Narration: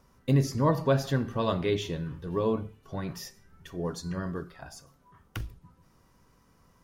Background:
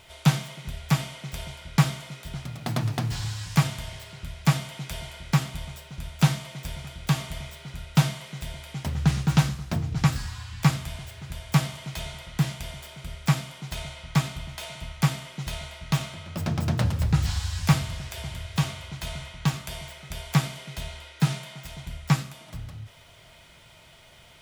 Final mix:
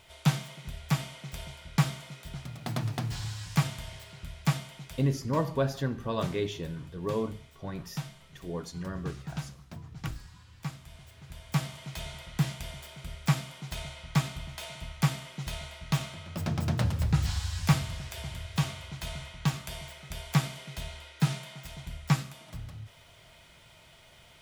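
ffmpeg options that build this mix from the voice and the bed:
-filter_complex "[0:a]adelay=4700,volume=0.668[s0];[1:a]volume=2.51,afade=t=out:st=4.39:d=0.83:silence=0.266073,afade=t=in:st=10.8:d=1.39:silence=0.223872[s1];[s0][s1]amix=inputs=2:normalize=0"

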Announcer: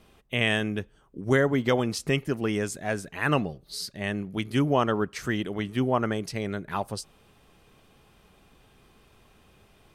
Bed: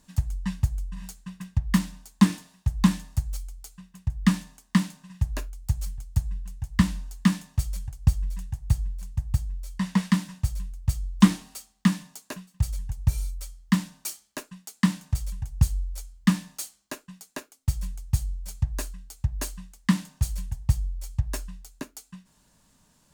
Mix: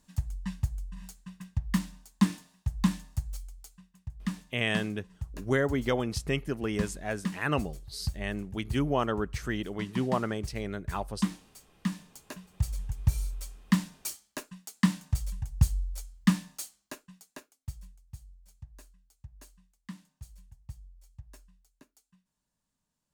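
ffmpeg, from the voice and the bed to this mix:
-filter_complex "[0:a]adelay=4200,volume=0.596[s0];[1:a]volume=1.58,afade=t=out:st=3.64:d=0.32:silence=0.473151,afade=t=in:st=11.69:d=1.19:silence=0.316228,afade=t=out:st=16.25:d=1.74:silence=0.112202[s1];[s0][s1]amix=inputs=2:normalize=0"

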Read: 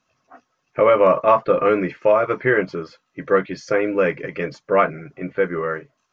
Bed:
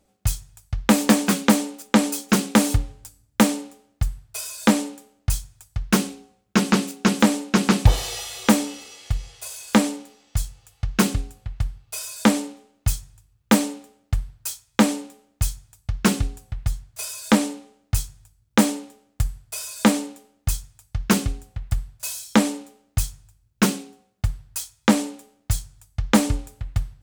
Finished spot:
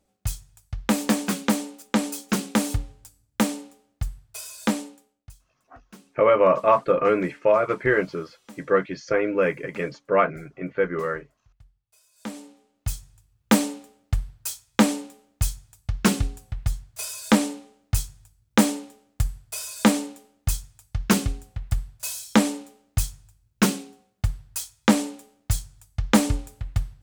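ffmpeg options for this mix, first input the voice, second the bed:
-filter_complex "[0:a]adelay=5400,volume=0.708[s0];[1:a]volume=13.3,afade=t=out:st=4.62:d=0.72:silence=0.0668344,afade=t=in:st=12.12:d=1.48:silence=0.0398107[s1];[s0][s1]amix=inputs=2:normalize=0"

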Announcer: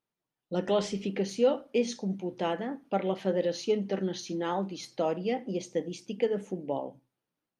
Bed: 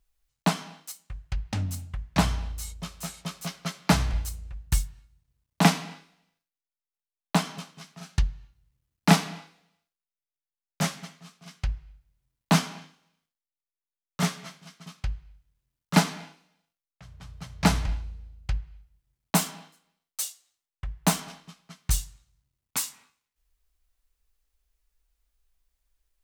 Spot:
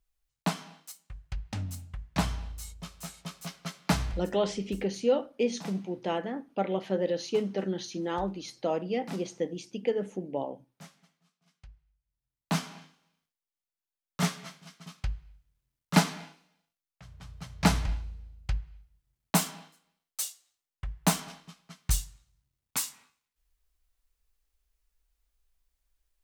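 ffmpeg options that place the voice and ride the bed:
-filter_complex "[0:a]adelay=3650,volume=0.944[s0];[1:a]volume=5.96,afade=t=out:st=4.1:d=0.2:silence=0.133352,afade=t=in:st=11.98:d=1.25:silence=0.0891251[s1];[s0][s1]amix=inputs=2:normalize=0"

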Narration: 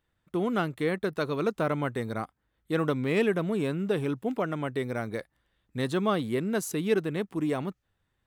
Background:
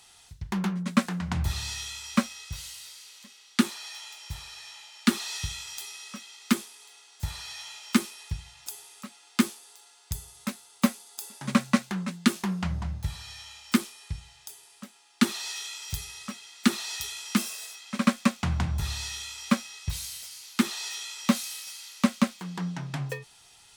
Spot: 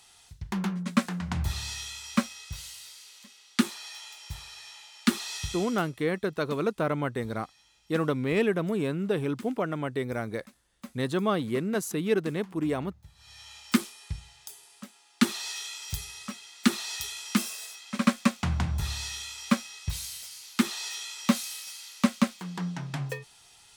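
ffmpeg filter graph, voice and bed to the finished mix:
-filter_complex "[0:a]adelay=5200,volume=1[s0];[1:a]volume=8.91,afade=t=out:st=5.57:d=0.35:silence=0.105925,afade=t=in:st=13.15:d=0.43:silence=0.0944061[s1];[s0][s1]amix=inputs=2:normalize=0"

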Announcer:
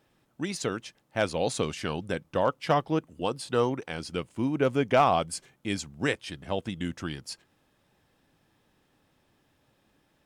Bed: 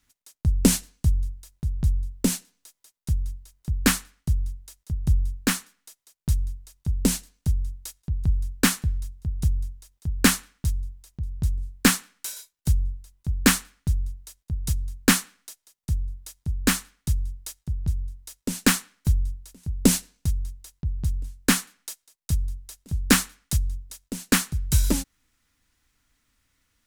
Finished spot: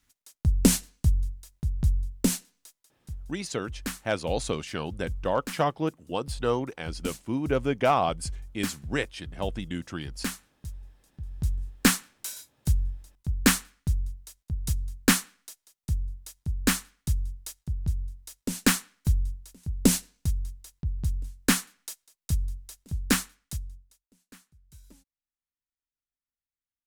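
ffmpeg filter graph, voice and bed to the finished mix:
-filter_complex "[0:a]adelay=2900,volume=0.891[s0];[1:a]volume=3.16,afade=t=out:st=2.69:d=0.23:silence=0.237137,afade=t=in:st=11.05:d=0.45:silence=0.266073,afade=t=out:st=22.68:d=1.37:silence=0.0334965[s1];[s0][s1]amix=inputs=2:normalize=0"

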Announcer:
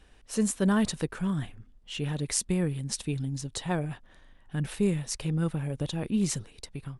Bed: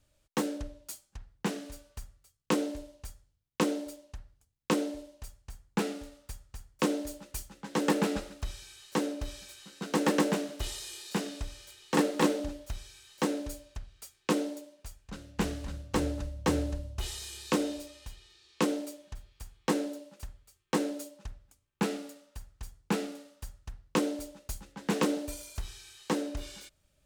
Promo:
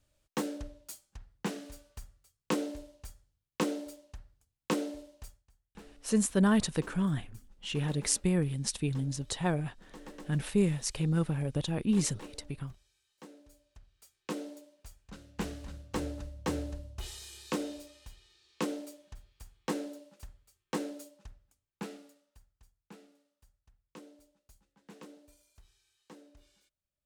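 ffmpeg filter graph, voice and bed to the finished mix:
-filter_complex "[0:a]adelay=5750,volume=0.944[s0];[1:a]volume=4.73,afade=t=out:st=5.26:d=0.23:silence=0.112202,afade=t=in:st=13.46:d=1.47:silence=0.149624,afade=t=out:st=20.73:d=2.02:silence=0.133352[s1];[s0][s1]amix=inputs=2:normalize=0"

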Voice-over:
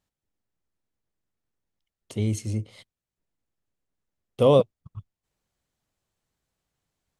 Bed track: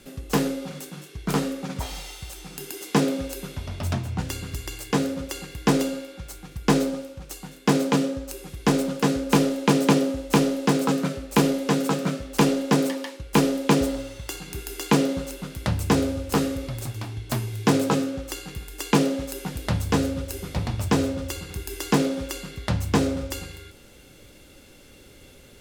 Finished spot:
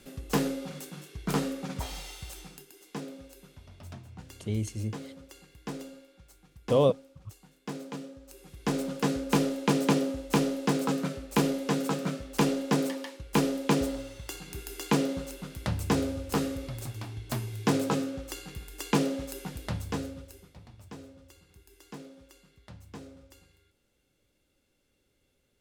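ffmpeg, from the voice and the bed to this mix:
-filter_complex "[0:a]adelay=2300,volume=0.562[s0];[1:a]volume=2.37,afade=t=out:st=2.39:d=0.26:silence=0.211349,afade=t=in:st=8.19:d=0.8:silence=0.251189,afade=t=out:st=19.33:d=1.21:silence=0.125893[s1];[s0][s1]amix=inputs=2:normalize=0"

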